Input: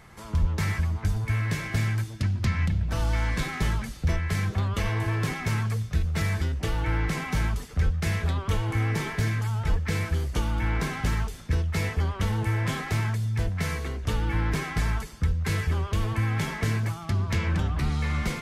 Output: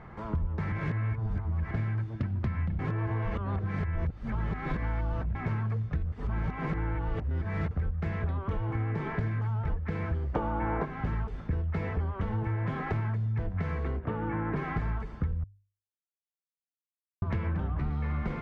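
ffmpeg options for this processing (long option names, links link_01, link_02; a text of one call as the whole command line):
ffmpeg -i in.wav -filter_complex "[0:a]asplit=3[link_01][link_02][link_03];[link_01]afade=type=out:start_time=10.34:duration=0.02[link_04];[link_02]equalizer=frequency=660:width=0.42:gain=14.5,afade=type=in:start_time=10.34:duration=0.02,afade=type=out:start_time=10.84:duration=0.02[link_05];[link_03]afade=type=in:start_time=10.84:duration=0.02[link_06];[link_04][link_05][link_06]amix=inputs=3:normalize=0,asplit=3[link_07][link_08][link_09];[link_07]afade=type=out:start_time=13.99:duration=0.02[link_10];[link_08]highpass=140,lowpass=2200,afade=type=in:start_time=13.99:duration=0.02,afade=type=out:start_time=14.55:duration=0.02[link_11];[link_09]afade=type=in:start_time=14.55:duration=0.02[link_12];[link_10][link_11][link_12]amix=inputs=3:normalize=0,asplit=9[link_13][link_14][link_15][link_16][link_17][link_18][link_19][link_20][link_21];[link_13]atrim=end=0.722[link_22];[link_14]atrim=start=0.718:end=1.712,asetpts=PTS-STARTPTS,areverse[link_23];[link_15]atrim=start=1.708:end=2.792[link_24];[link_16]atrim=start=2.788:end=5.352,asetpts=PTS-STARTPTS,areverse[link_25];[link_17]atrim=start=5.348:end=6.122[link_26];[link_18]atrim=start=6.118:end=7.712,asetpts=PTS-STARTPTS,areverse[link_27];[link_19]atrim=start=7.708:end=15.44,asetpts=PTS-STARTPTS,afade=type=out:start_time=7.728:duration=0.004:curve=hsin[link_28];[link_20]atrim=start=15.44:end=17.22,asetpts=PTS-STARTPTS,volume=0[link_29];[link_21]atrim=start=17.22,asetpts=PTS-STARTPTS,afade=type=in:duration=0.004:curve=hsin[link_30];[link_22][link_23]acrossfade=duration=0.004:curve1=hsin:curve2=hsin[link_31];[link_31][link_24]acrossfade=duration=0.004:curve1=hsin:curve2=hsin[link_32];[link_32][link_25]acrossfade=duration=0.004:curve1=hsin:curve2=hsin[link_33];[link_33][link_26]acrossfade=duration=0.004:curve1=hsin:curve2=hsin[link_34];[link_34][link_27]acrossfade=duration=0.004:curve1=hsin:curve2=hsin[link_35];[link_28][link_29][link_30]concat=n=3:v=0:a=1[link_36];[link_35][link_36]acrossfade=duration=0.004:curve1=hsin:curve2=hsin,lowpass=1400,bandreject=frequency=50:width_type=h:width=6,bandreject=frequency=100:width_type=h:width=6,acompressor=threshold=-33dB:ratio=6,volume=5dB" out.wav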